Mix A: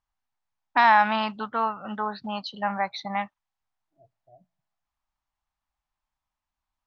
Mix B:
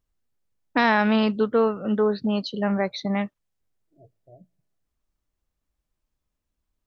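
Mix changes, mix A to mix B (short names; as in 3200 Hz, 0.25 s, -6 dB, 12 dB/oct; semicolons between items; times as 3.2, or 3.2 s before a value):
first voice: remove air absorption 78 m; master: add resonant low shelf 620 Hz +10 dB, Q 3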